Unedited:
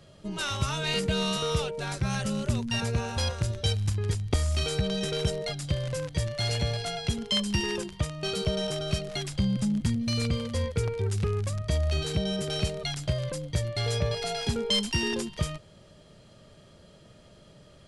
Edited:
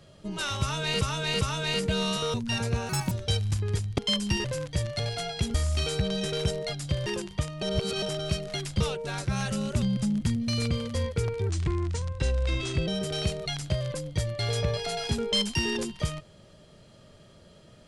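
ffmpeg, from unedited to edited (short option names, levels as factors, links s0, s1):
-filter_complex "[0:a]asplit=17[s0][s1][s2][s3][s4][s5][s6][s7][s8][s9][s10][s11][s12][s13][s14][s15][s16];[s0]atrim=end=1.012[s17];[s1]atrim=start=0.608:end=1.012[s18];[s2]atrim=start=0.608:end=1.542[s19];[s3]atrim=start=2.558:end=3.114[s20];[s4]atrim=start=3.11:end=3.47,asetpts=PTS-STARTPTS,asetrate=71001,aresample=44100[s21];[s5]atrim=start=3.466:end=4.342[s22];[s6]atrim=start=7.218:end=7.682[s23];[s7]atrim=start=5.858:end=6.412[s24];[s8]atrim=start=6.668:end=7.222[s25];[s9]atrim=start=4.338:end=5.862[s26];[s10]atrim=start=7.678:end=8.242[s27];[s11]atrim=start=8.238:end=8.642,asetpts=PTS-STARTPTS,areverse[s28];[s12]atrim=start=8.638:end=9.422[s29];[s13]atrim=start=1.538:end=2.562[s30];[s14]atrim=start=9.418:end=11.094[s31];[s15]atrim=start=11.09:end=12.25,asetpts=PTS-STARTPTS,asetrate=37044,aresample=44100[s32];[s16]atrim=start=12.246[s33];[s17][s18]acrossfade=d=0.004:c1=hsin:c2=hsin[s34];[s34][s19]acrossfade=d=0.004:c1=hsin:c2=hsin[s35];[s35][s20]acrossfade=d=0.004:c1=hsin:c2=hsin[s36];[s36][s21]acrossfade=d=0.004:c1=hsin:c2=hsin[s37];[s37][s22]acrossfade=d=0.004:c1=hsin:c2=hsin[s38];[s38][s23]acrossfade=d=0.004:c1=hsin:c2=hsin[s39];[s39][s24]acrossfade=d=0.004:c1=hsin:c2=hsin[s40];[s40][s25]acrossfade=d=0.004:c1=hsin:c2=hsin[s41];[s41][s26]acrossfade=d=0.004:c1=hsin:c2=hsin[s42];[s42][s27]acrossfade=d=0.004:c1=hsin:c2=hsin[s43];[s43][s28]acrossfade=d=0.004:c1=hsin:c2=hsin[s44];[s44][s29]acrossfade=d=0.004:c1=hsin:c2=hsin[s45];[s45][s30]acrossfade=d=0.004:c1=hsin:c2=hsin[s46];[s46][s31]acrossfade=d=0.004:c1=hsin:c2=hsin[s47];[s47][s32]acrossfade=d=0.004:c1=hsin:c2=hsin[s48];[s48][s33]acrossfade=d=0.004:c1=hsin:c2=hsin"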